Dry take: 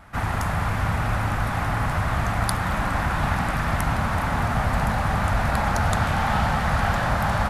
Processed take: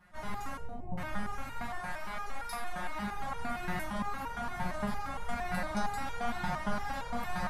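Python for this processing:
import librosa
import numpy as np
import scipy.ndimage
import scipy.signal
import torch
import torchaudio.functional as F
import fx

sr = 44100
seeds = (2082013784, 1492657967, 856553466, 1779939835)

y = fx.steep_lowpass(x, sr, hz=780.0, slope=48, at=(0.56, 0.98))
y = fx.peak_eq(y, sr, hz=100.0, db=-12.0, octaves=2.3, at=(1.69, 2.99))
y = fx.echo_feedback(y, sr, ms=92, feedback_pct=42, wet_db=-15.0)
y = fx.wow_flutter(y, sr, seeds[0], rate_hz=2.1, depth_cents=140.0)
y = fx.room_shoebox(y, sr, seeds[1], volume_m3=330.0, walls='furnished', distance_m=1.2)
y = fx.resonator_held(y, sr, hz=8.7, low_hz=180.0, high_hz=470.0)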